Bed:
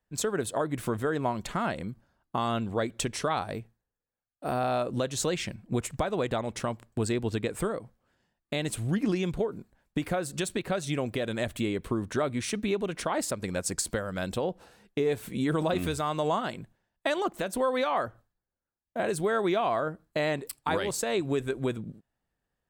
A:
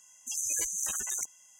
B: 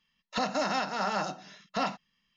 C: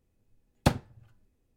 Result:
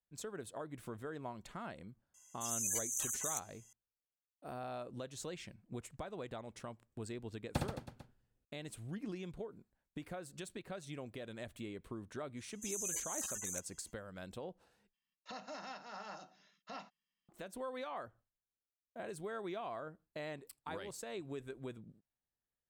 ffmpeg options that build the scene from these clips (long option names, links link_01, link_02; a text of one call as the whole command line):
ffmpeg -i bed.wav -i cue0.wav -i cue1.wav -i cue2.wav -filter_complex "[1:a]asplit=2[link_01][link_02];[0:a]volume=-16dB[link_03];[link_01]highshelf=frequency=8700:gain=5.5[link_04];[3:a]aecho=1:1:60|132|218.4|322.1|446.5:0.631|0.398|0.251|0.158|0.1[link_05];[2:a]lowshelf=frequency=120:gain=-10[link_06];[link_03]asplit=2[link_07][link_08];[link_07]atrim=end=14.934[link_09];[link_06]atrim=end=2.36,asetpts=PTS-STARTPTS,volume=-17.5dB[link_10];[link_08]atrim=start=17.286[link_11];[link_04]atrim=end=1.59,asetpts=PTS-STARTPTS,volume=-8dB,afade=type=in:duration=0.004:curve=hsin,afade=type=out:start_time=1.586:duration=0.004:curve=hsin,adelay=2140[link_12];[link_05]atrim=end=1.56,asetpts=PTS-STARTPTS,volume=-13.5dB,afade=type=in:duration=0.004:curve=hsin,afade=type=out:start_time=1.556:duration=0.004:curve=hsin,adelay=6890[link_13];[link_02]atrim=end=1.59,asetpts=PTS-STARTPTS,volume=-9dB,afade=type=in:duration=0.05,afade=type=out:start_time=1.54:duration=0.05,adelay=12350[link_14];[link_09][link_10]acrossfade=duration=0.004:curve1=hsin:curve2=hsin[link_15];[link_15][link_11]acrossfade=duration=0.004:curve1=hsin:curve2=hsin[link_16];[link_16][link_12][link_13][link_14]amix=inputs=4:normalize=0" out.wav